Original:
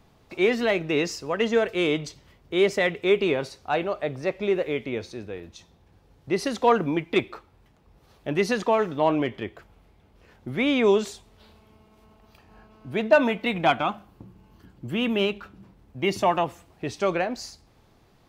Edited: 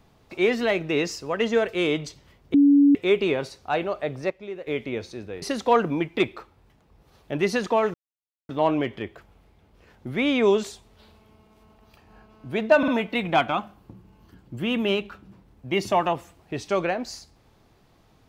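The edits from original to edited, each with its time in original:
2.54–2.95 s: bleep 284 Hz -12 dBFS
4.30–4.67 s: gain -11.5 dB
5.42–6.38 s: delete
8.90 s: insert silence 0.55 s
13.19 s: stutter 0.05 s, 3 plays

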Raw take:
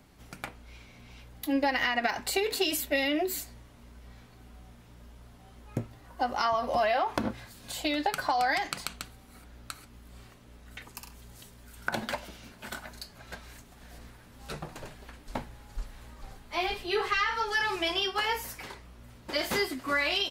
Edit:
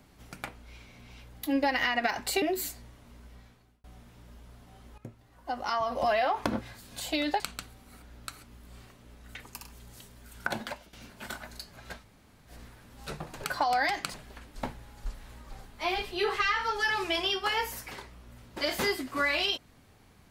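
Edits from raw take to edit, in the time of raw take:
2.42–3.14 s: delete
3.98–4.56 s: fade out
5.70–6.83 s: fade in, from -14.5 dB
8.12–8.82 s: move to 14.86 s
11.88–12.35 s: fade out, to -14.5 dB
13.43–13.91 s: room tone, crossfade 0.10 s

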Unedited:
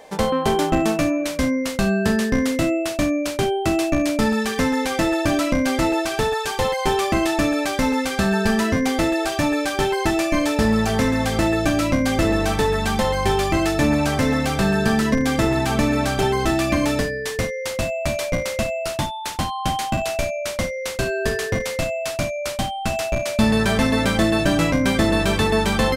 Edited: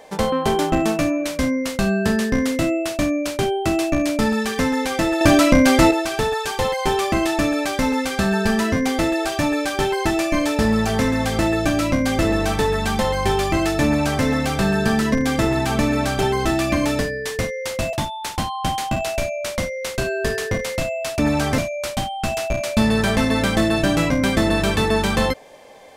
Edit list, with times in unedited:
5.21–5.91 s: gain +6.5 dB
13.85–14.24 s: copy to 22.20 s
17.93–18.94 s: delete

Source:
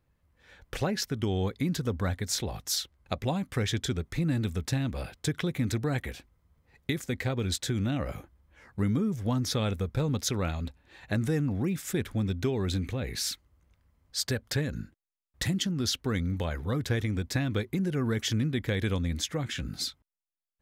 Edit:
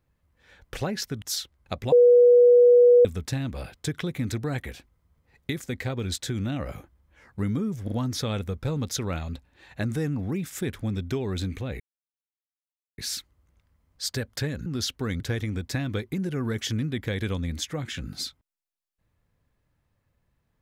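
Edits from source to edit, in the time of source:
1.22–2.62 s: delete
3.32–4.45 s: bleep 486 Hz -11.5 dBFS
9.24 s: stutter 0.04 s, 3 plays
13.12 s: insert silence 1.18 s
14.80–15.71 s: delete
16.25–16.81 s: delete

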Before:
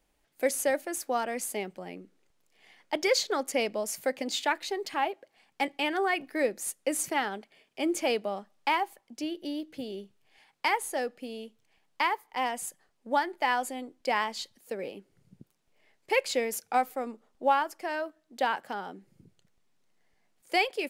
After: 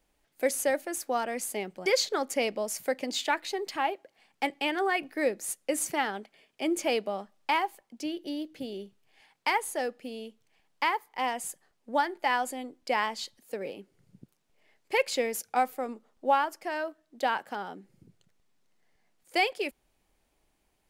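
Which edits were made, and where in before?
1.86–3.04 s: delete

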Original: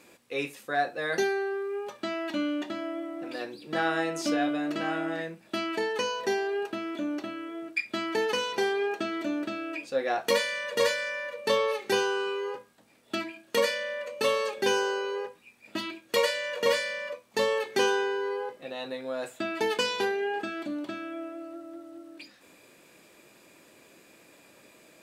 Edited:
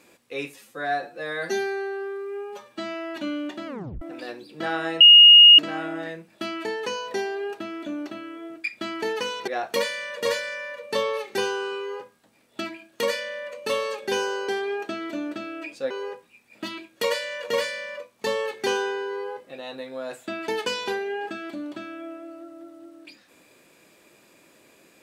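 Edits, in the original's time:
0.54–2.29 s: stretch 1.5×
2.79 s: tape stop 0.35 s
4.13–4.71 s: bleep 2.86 kHz -6.5 dBFS
8.60–10.02 s: move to 15.03 s

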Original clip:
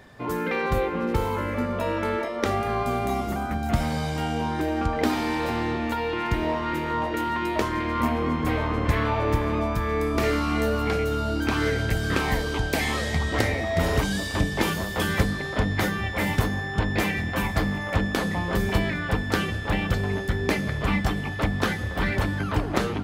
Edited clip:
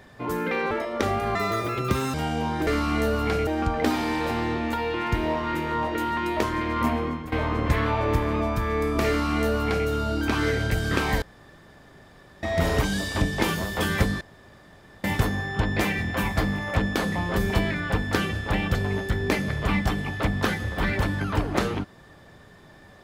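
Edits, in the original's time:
0.71–2.14 s: delete
2.78–4.13 s: speed 171%
8.14–8.51 s: fade out, to -16.5 dB
10.27–11.07 s: copy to 4.66 s
12.41–13.62 s: room tone
15.40–16.23 s: room tone

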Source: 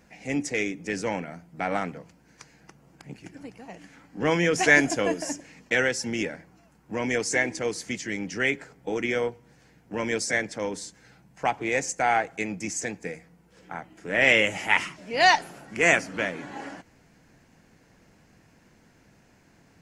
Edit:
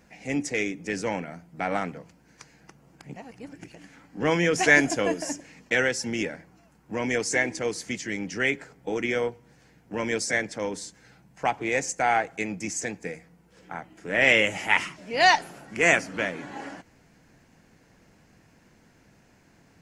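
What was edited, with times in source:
3.16–3.74 s: reverse

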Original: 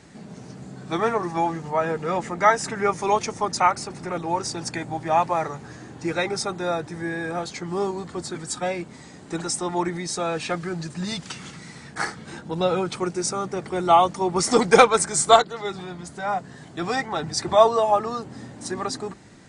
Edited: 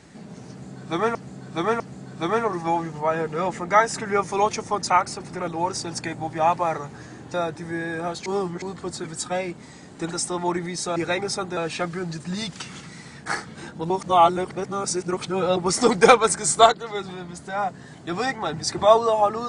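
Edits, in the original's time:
0.50–1.15 s: loop, 3 plays
6.04–6.65 s: move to 10.27 s
7.57–7.93 s: reverse
12.60–14.27 s: reverse

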